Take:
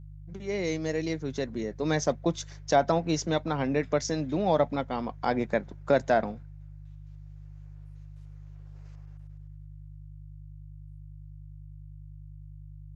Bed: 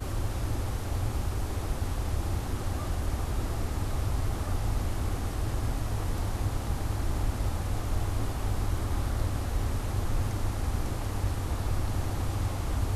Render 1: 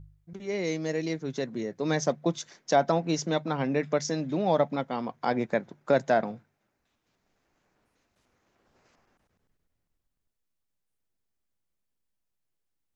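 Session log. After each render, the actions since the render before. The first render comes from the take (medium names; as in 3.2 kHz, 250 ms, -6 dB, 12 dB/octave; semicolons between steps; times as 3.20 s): de-hum 50 Hz, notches 3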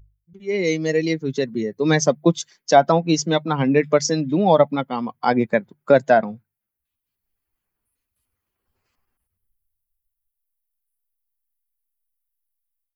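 expander on every frequency bin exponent 1.5; level rider gain up to 13.5 dB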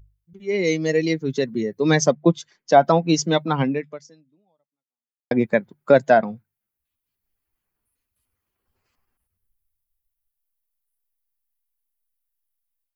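2.11–2.81 s: low-pass 2.2 kHz 6 dB/octave; 3.62–5.31 s: fade out exponential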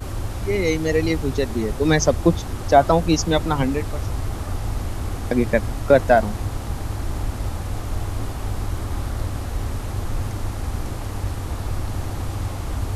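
add bed +3.5 dB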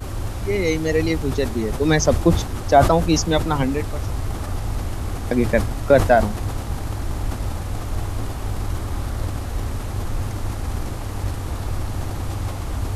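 decay stretcher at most 96 dB/s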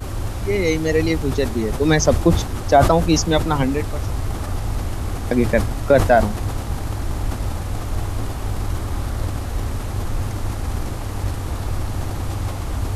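trim +1.5 dB; peak limiter -3 dBFS, peak gain reduction 2.5 dB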